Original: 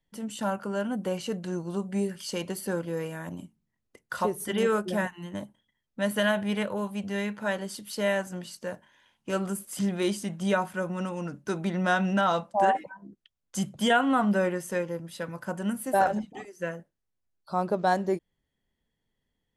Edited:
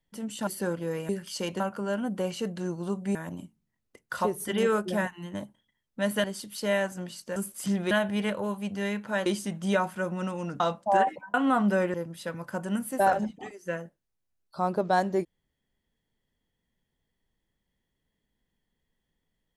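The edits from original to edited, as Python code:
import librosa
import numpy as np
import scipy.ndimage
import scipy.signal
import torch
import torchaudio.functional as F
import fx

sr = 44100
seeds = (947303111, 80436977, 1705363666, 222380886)

y = fx.edit(x, sr, fx.swap(start_s=0.47, length_s=1.55, other_s=2.53, other_length_s=0.62),
    fx.move(start_s=6.24, length_s=1.35, to_s=10.04),
    fx.cut(start_s=8.71, length_s=0.78),
    fx.cut(start_s=11.38, length_s=0.9),
    fx.cut(start_s=13.02, length_s=0.95),
    fx.cut(start_s=14.57, length_s=0.31), tone=tone)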